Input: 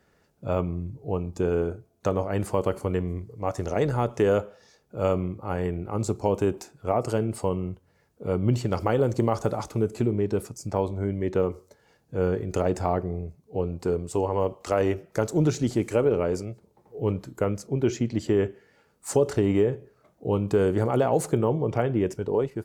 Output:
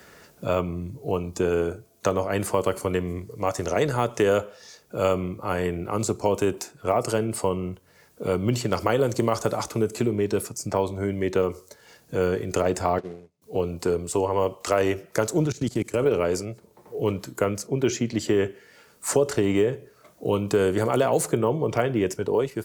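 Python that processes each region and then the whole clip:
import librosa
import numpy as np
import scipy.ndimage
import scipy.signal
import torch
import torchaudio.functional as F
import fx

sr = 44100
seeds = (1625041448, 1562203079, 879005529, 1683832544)

y = fx.chain(x, sr, fx.law_mismatch(coded='mu'),
    fx.bandpass_edges(low_hz=180.0, high_hz=6200.0),
    fx.upward_expand(threshold_db=-47.0, expansion=2.5), at=(12.98, 13.42))
y = fx.chain(y, sr, fx.low_shelf(hz=160.0, db=9.0),
    fx.level_steps(step_db=24), at=(15.45, 16.06))
y = fx.tilt_eq(y, sr, slope=2.0)
y = fx.notch(y, sr, hz=810.0, q=12.0)
y = fx.band_squash(y, sr, depth_pct=40)
y = y * 10.0 ** (4.0 / 20.0)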